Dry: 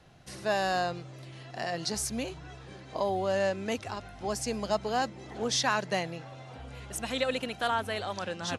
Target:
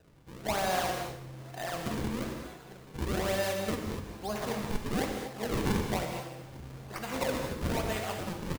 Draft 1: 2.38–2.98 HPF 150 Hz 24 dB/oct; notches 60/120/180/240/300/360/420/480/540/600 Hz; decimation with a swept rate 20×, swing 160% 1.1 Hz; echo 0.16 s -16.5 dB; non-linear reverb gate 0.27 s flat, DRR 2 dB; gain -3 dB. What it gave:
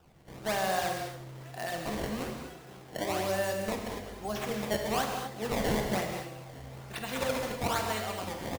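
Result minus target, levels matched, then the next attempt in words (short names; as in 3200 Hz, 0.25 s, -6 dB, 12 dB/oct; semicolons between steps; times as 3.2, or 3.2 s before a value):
decimation with a swept rate: distortion -5 dB
2.38–2.98 HPF 150 Hz 24 dB/oct; notches 60/120/180/240/300/360/420/480/540/600 Hz; decimation with a swept rate 39×, swing 160% 1.1 Hz; echo 0.16 s -16.5 dB; non-linear reverb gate 0.27 s flat, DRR 2 dB; gain -3 dB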